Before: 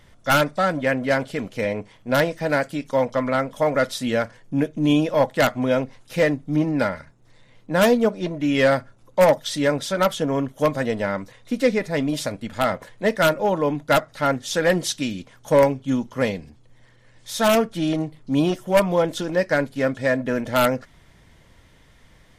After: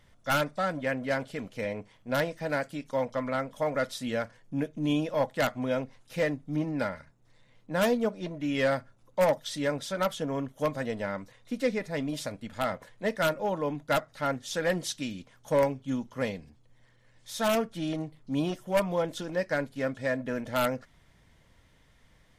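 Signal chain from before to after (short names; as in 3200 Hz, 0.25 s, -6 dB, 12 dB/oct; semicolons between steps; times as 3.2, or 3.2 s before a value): bell 360 Hz -2.5 dB 0.4 oct; gain -8.5 dB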